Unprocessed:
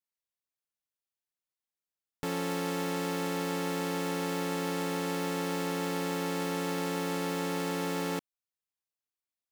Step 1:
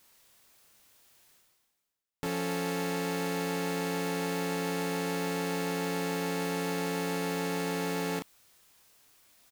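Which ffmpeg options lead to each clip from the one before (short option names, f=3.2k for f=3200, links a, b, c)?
-filter_complex "[0:a]asplit=2[a][b];[b]adelay=30,volume=-7dB[c];[a][c]amix=inputs=2:normalize=0,areverse,acompressor=mode=upward:threshold=-38dB:ratio=2.5,areverse"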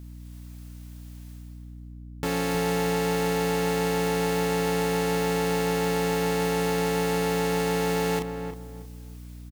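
-filter_complex "[0:a]dynaudnorm=f=180:g=3:m=5.5dB,asplit=2[a][b];[b]adelay=316,lowpass=f=1.3k:p=1,volume=-6.5dB,asplit=2[c][d];[d]adelay=316,lowpass=f=1.3k:p=1,volume=0.29,asplit=2[e][f];[f]adelay=316,lowpass=f=1.3k:p=1,volume=0.29,asplit=2[g][h];[h]adelay=316,lowpass=f=1.3k:p=1,volume=0.29[i];[a][c][e][g][i]amix=inputs=5:normalize=0,aeval=exprs='val(0)+0.01*(sin(2*PI*60*n/s)+sin(2*PI*2*60*n/s)/2+sin(2*PI*3*60*n/s)/3+sin(2*PI*4*60*n/s)/4+sin(2*PI*5*60*n/s)/5)':c=same"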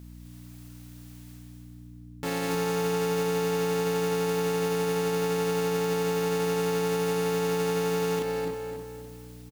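-filter_complex "[0:a]lowshelf=f=92:g=-7,alimiter=limit=-21.5dB:level=0:latency=1,asplit=2[a][b];[b]aecho=0:1:257|514|771|1028:0.473|0.175|0.0648|0.024[c];[a][c]amix=inputs=2:normalize=0"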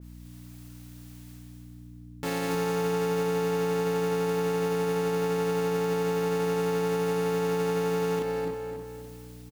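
-af "adynamicequalizer=threshold=0.00355:dfrequency=2300:dqfactor=0.7:tfrequency=2300:tqfactor=0.7:attack=5:release=100:ratio=0.375:range=2.5:mode=cutabove:tftype=highshelf"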